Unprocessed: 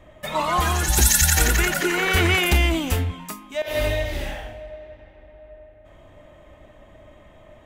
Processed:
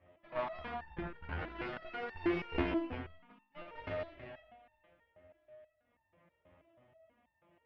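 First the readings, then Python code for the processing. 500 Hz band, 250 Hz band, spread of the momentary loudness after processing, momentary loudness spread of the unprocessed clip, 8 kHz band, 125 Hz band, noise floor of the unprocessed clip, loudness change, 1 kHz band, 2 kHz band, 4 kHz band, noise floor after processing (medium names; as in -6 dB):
-14.5 dB, -12.0 dB, 17 LU, 18 LU, under -40 dB, -23.5 dB, -50 dBFS, -20.0 dB, -18.0 dB, -21.5 dB, -27.5 dB, -79 dBFS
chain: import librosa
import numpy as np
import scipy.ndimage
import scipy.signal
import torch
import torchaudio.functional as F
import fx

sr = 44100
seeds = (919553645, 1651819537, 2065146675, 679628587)

p1 = fx.cvsd(x, sr, bps=16000)
p2 = scipy.signal.sosfilt(scipy.signal.butter(4, 67.0, 'highpass', fs=sr, output='sos'), p1)
p3 = fx.high_shelf(p2, sr, hz=2400.0, db=-6.5)
p4 = p3 + fx.echo_single(p3, sr, ms=72, db=-10.5, dry=0)
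p5 = fx.cheby_harmonics(p4, sr, harmonics=(2, 3, 5, 7), levels_db=(-10, -12, -30, -37), full_scale_db=-9.5)
p6 = fx.resonator_held(p5, sr, hz=6.2, low_hz=89.0, high_hz=900.0)
y = p6 * librosa.db_to_amplitude(4.5)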